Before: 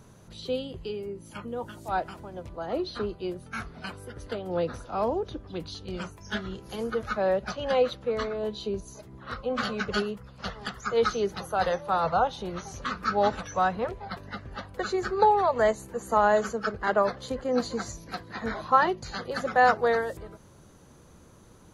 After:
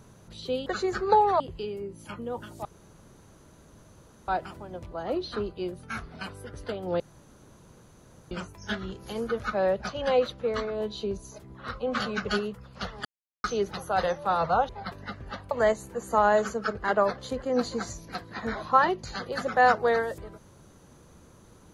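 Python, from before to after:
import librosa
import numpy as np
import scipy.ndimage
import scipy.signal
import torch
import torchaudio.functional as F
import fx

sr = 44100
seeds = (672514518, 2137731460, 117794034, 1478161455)

y = fx.edit(x, sr, fx.insert_room_tone(at_s=1.91, length_s=1.63),
    fx.room_tone_fill(start_s=4.63, length_s=1.31),
    fx.silence(start_s=10.68, length_s=0.39),
    fx.cut(start_s=12.32, length_s=1.62),
    fx.move(start_s=14.76, length_s=0.74, to_s=0.66), tone=tone)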